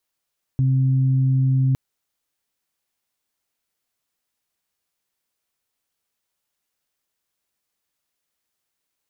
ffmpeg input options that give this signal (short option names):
-f lavfi -i "aevalsrc='0.178*sin(2*PI*132*t)+0.0355*sin(2*PI*264*t)':d=1.16:s=44100"